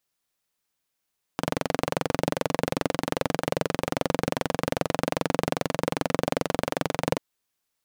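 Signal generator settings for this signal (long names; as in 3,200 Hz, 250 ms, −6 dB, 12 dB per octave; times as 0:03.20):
pulse-train model of a single-cylinder engine, steady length 5.79 s, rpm 2,700, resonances 170/270/480 Hz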